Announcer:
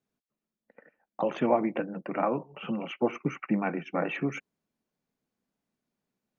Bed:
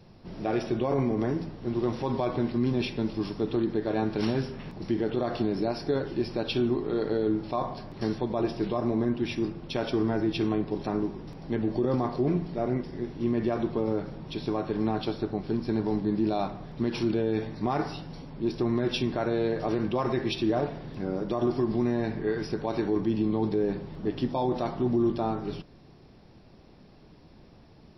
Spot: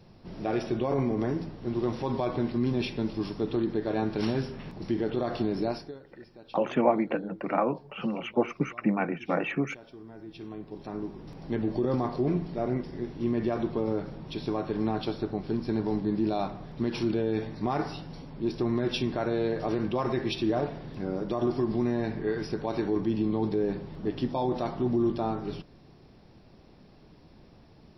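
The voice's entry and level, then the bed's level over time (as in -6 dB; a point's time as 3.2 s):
5.35 s, +1.5 dB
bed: 5.74 s -1 dB
5.99 s -20.5 dB
10.03 s -20.5 dB
11.39 s -1 dB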